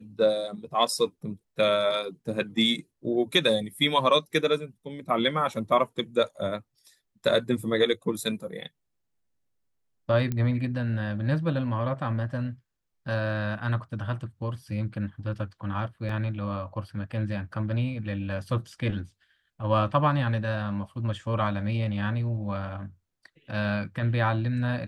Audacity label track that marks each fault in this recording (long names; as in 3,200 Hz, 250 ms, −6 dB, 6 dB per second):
10.320000	10.320000	click −17 dBFS
16.090000	16.090000	drop-out 4 ms